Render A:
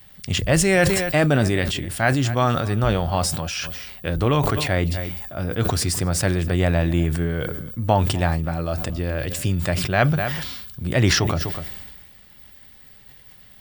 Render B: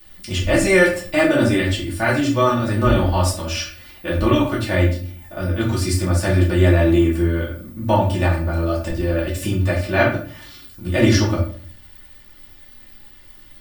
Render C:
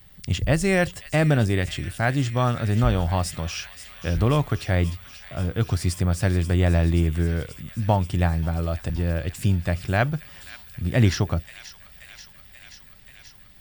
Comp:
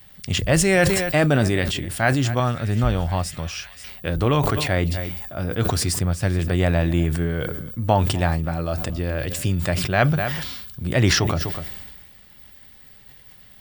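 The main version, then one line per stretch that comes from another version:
A
2.40–3.84 s: from C
5.99–6.39 s: from C
not used: B

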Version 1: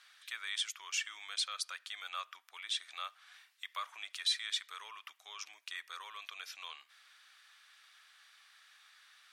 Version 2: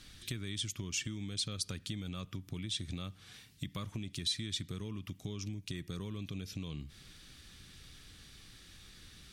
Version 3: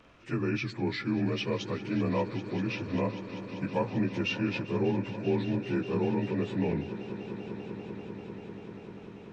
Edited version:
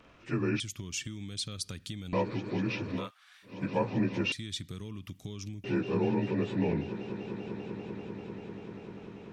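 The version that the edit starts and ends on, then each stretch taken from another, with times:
3
0.60–2.13 s: from 2
2.99–3.54 s: from 1, crossfade 0.24 s
4.32–5.64 s: from 2

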